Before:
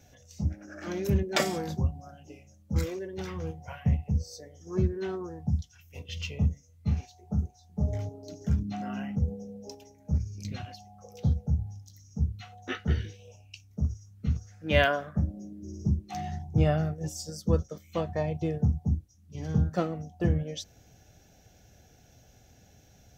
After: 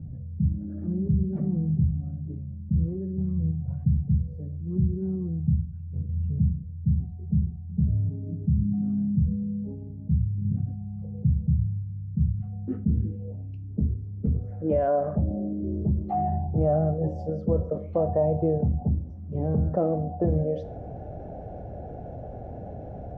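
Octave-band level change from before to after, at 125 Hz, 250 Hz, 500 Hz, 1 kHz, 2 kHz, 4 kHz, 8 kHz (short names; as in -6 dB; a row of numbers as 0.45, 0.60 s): +4.5 dB, +6.0 dB, +5.0 dB, +3.5 dB, under -20 dB, under -30 dB, under -30 dB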